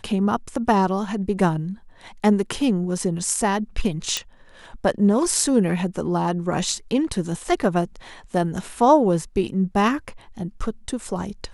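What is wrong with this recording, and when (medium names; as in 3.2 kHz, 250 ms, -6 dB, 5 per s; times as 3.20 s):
4.17 s: pop -7 dBFS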